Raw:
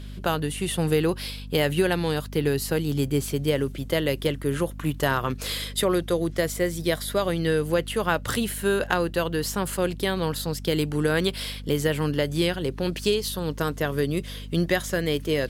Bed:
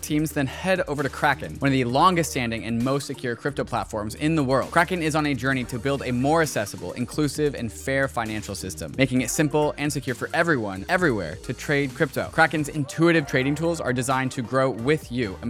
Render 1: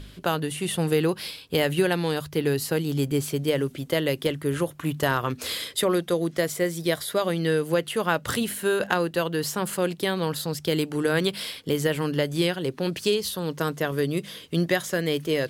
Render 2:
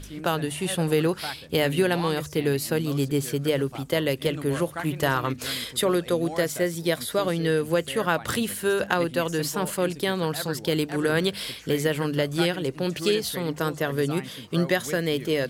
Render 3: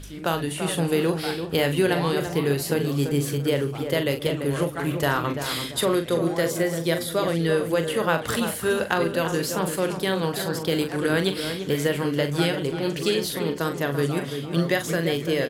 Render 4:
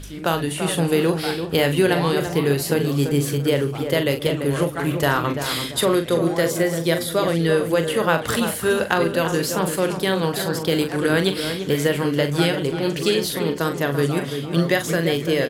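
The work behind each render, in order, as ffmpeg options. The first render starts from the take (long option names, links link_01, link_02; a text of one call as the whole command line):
ffmpeg -i in.wav -af "bandreject=frequency=50:width_type=h:width=4,bandreject=frequency=100:width_type=h:width=4,bandreject=frequency=150:width_type=h:width=4,bandreject=frequency=200:width_type=h:width=4,bandreject=frequency=250:width_type=h:width=4" out.wav
ffmpeg -i in.wav -i bed.wav -filter_complex "[1:a]volume=-15dB[link_01];[0:a][link_01]amix=inputs=2:normalize=0" out.wav
ffmpeg -i in.wav -filter_complex "[0:a]asplit=2[link_01][link_02];[link_02]adelay=42,volume=-8.5dB[link_03];[link_01][link_03]amix=inputs=2:normalize=0,asplit=2[link_04][link_05];[link_05]adelay=339,lowpass=frequency=1700:poles=1,volume=-7.5dB,asplit=2[link_06][link_07];[link_07]adelay=339,lowpass=frequency=1700:poles=1,volume=0.34,asplit=2[link_08][link_09];[link_09]adelay=339,lowpass=frequency=1700:poles=1,volume=0.34,asplit=2[link_10][link_11];[link_11]adelay=339,lowpass=frequency=1700:poles=1,volume=0.34[link_12];[link_06][link_08][link_10][link_12]amix=inputs=4:normalize=0[link_13];[link_04][link_13]amix=inputs=2:normalize=0" out.wav
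ffmpeg -i in.wav -af "volume=3.5dB" out.wav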